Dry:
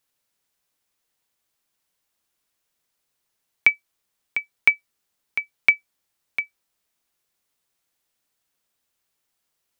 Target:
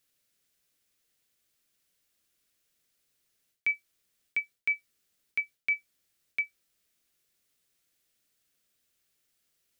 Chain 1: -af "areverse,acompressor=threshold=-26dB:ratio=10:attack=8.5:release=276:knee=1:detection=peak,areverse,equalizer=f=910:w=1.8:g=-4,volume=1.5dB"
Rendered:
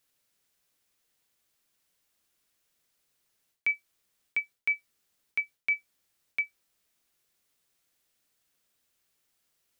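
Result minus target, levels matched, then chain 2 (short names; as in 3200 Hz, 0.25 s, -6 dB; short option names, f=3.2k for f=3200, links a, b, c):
1000 Hz band +3.0 dB
-af "areverse,acompressor=threshold=-26dB:ratio=10:attack=8.5:release=276:knee=1:detection=peak,areverse,equalizer=f=910:w=1.8:g=-11,volume=1.5dB"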